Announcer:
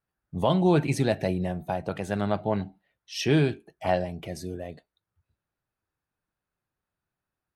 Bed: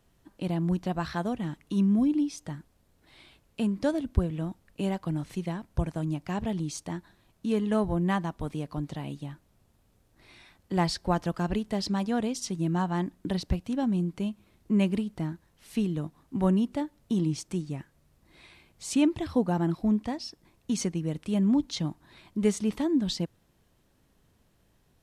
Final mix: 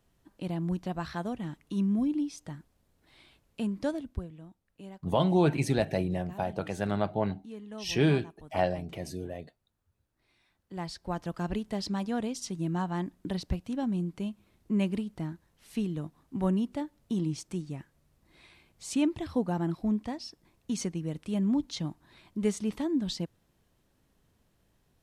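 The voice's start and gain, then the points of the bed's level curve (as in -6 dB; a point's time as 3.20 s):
4.70 s, -2.5 dB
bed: 3.89 s -4 dB
4.42 s -16.5 dB
10.40 s -16.5 dB
11.46 s -3.5 dB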